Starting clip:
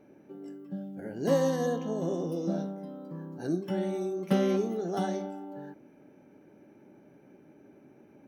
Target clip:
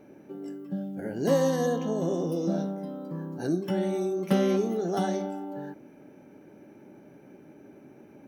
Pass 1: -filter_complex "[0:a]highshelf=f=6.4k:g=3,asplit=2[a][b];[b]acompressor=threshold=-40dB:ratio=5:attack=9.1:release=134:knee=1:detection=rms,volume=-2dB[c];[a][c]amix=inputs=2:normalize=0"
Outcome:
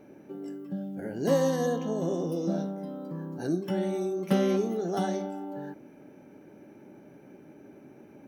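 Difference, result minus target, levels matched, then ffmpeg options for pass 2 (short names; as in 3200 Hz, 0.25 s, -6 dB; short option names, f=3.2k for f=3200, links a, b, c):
compressor: peak gain reduction +6 dB
-filter_complex "[0:a]highshelf=f=6.4k:g=3,asplit=2[a][b];[b]acompressor=threshold=-32.5dB:ratio=5:attack=9.1:release=134:knee=1:detection=rms,volume=-2dB[c];[a][c]amix=inputs=2:normalize=0"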